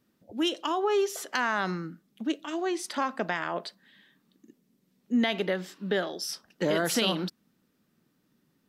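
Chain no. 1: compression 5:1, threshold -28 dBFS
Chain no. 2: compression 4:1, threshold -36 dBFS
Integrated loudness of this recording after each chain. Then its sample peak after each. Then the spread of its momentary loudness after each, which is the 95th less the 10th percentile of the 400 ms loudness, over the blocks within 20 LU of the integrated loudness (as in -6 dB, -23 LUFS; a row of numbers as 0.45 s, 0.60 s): -34.0 LUFS, -39.0 LUFS; -12.5 dBFS, -18.0 dBFS; 7 LU, 7 LU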